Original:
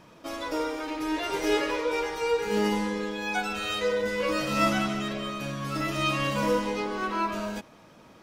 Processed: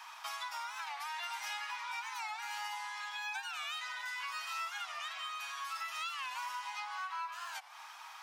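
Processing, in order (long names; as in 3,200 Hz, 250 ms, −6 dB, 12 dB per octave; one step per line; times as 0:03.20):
Butterworth high-pass 780 Hz 72 dB per octave
downward compressor 5 to 1, threshold −48 dBFS, peak gain reduction 23 dB
wow of a warped record 45 rpm, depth 160 cents
level +7.5 dB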